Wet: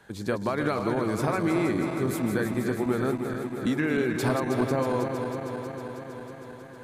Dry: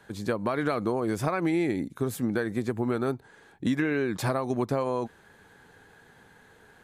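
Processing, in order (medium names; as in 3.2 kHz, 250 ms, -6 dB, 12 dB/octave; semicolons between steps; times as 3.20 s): backward echo that repeats 159 ms, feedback 84%, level -7 dB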